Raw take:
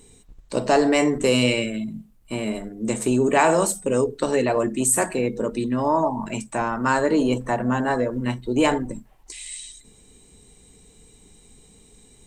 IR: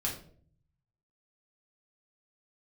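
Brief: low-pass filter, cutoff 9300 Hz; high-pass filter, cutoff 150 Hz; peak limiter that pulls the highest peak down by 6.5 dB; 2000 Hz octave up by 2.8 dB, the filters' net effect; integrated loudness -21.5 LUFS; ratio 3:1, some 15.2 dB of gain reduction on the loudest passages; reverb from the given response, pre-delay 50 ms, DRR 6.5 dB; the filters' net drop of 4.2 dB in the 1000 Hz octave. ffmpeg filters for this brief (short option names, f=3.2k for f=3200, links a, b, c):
-filter_complex "[0:a]highpass=150,lowpass=9.3k,equalizer=f=1k:t=o:g=-6.5,equalizer=f=2k:t=o:g=5.5,acompressor=threshold=-37dB:ratio=3,alimiter=level_in=2.5dB:limit=-24dB:level=0:latency=1,volume=-2.5dB,asplit=2[a][b];[1:a]atrim=start_sample=2205,adelay=50[c];[b][c]afir=irnorm=-1:irlink=0,volume=-10.5dB[d];[a][d]amix=inputs=2:normalize=0,volume=15dB"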